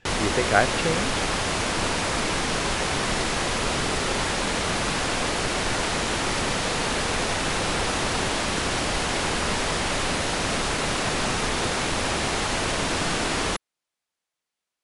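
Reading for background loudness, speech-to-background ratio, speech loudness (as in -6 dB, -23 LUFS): -24.5 LUFS, -1.0 dB, -25.5 LUFS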